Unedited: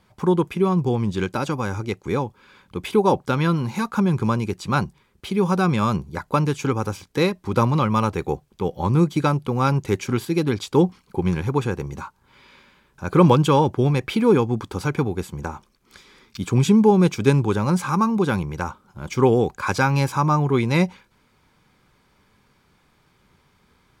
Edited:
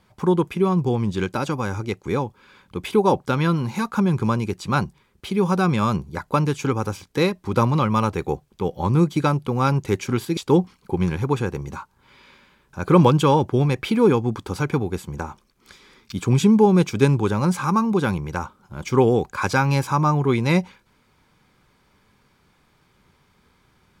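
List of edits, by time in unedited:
10.37–10.62 cut

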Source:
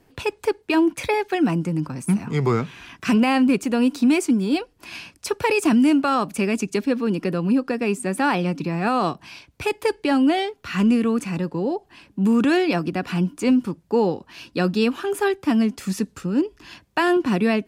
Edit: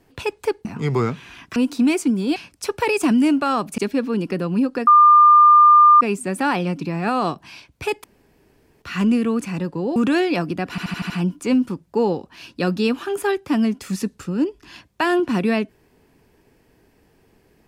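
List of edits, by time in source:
0.65–2.16 cut
3.07–3.79 cut
4.59–4.98 cut
6.4–6.71 cut
7.8 add tone 1200 Hz -7 dBFS 1.14 s
9.83–10.61 room tone
11.75–12.33 cut
13.07 stutter 0.08 s, 6 plays

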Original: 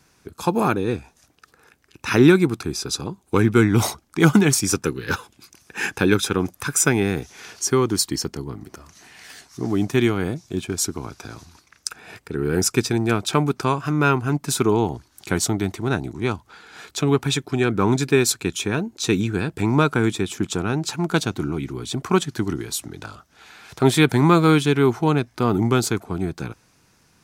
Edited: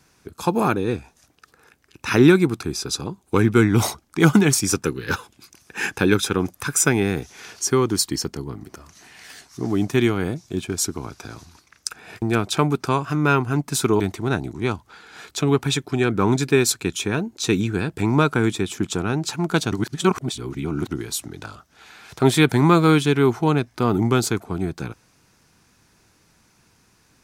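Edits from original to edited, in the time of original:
12.22–12.98 cut
14.76–15.6 cut
21.32–22.51 reverse

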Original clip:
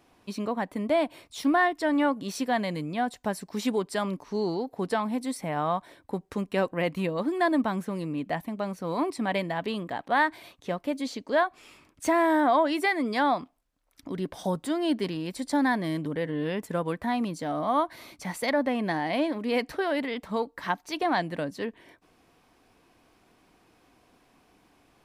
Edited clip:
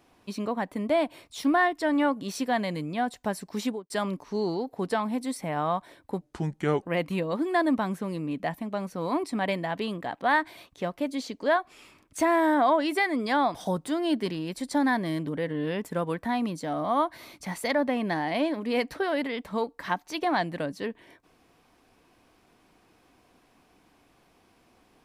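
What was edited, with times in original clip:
3.6–3.9 studio fade out
6.21–6.69 speed 78%
13.41–14.33 cut

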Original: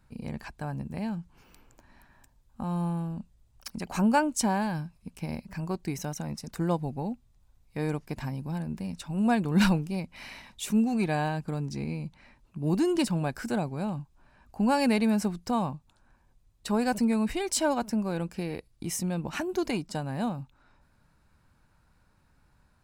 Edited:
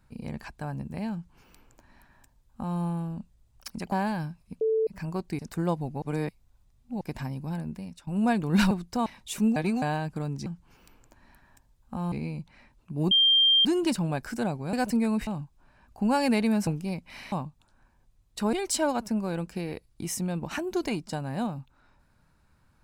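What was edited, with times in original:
1.13–2.79 copy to 11.78
3.92–4.47 cut
5.16–5.42 bleep 442 Hz -21.5 dBFS
5.94–6.41 cut
7.04–8.03 reverse
8.64–9.09 fade out, to -13.5 dB
9.73–10.38 swap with 15.25–15.6
10.88–11.14 reverse
12.77 add tone 3180 Hz -17 dBFS 0.54 s
16.81–17.35 move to 13.85

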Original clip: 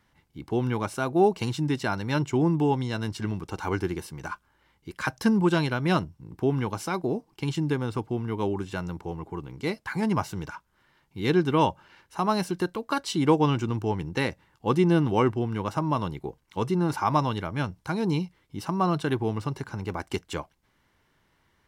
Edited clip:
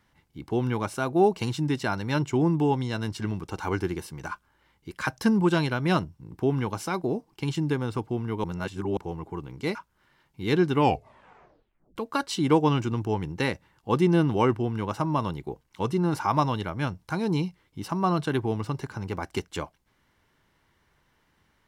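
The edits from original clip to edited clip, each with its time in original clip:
8.44–8.97 reverse
9.75–10.52 cut
11.49 tape stop 1.24 s

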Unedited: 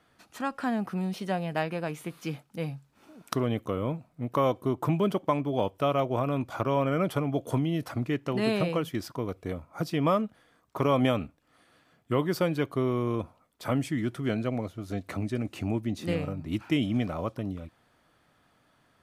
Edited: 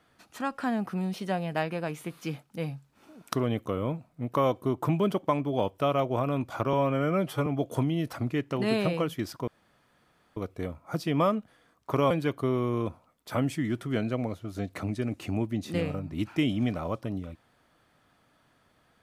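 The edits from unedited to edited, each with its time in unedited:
6.73–7.22 stretch 1.5×
9.23 insert room tone 0.89 s
10.97–12.44 cut

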